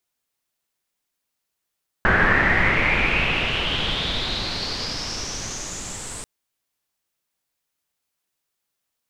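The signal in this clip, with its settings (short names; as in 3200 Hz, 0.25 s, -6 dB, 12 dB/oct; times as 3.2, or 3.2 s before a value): swept filtered noise pink, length 4.19 s lowpass, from 1600 Hz, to 8400 Hz, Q 6.3, exponential, gain ramp -18 dB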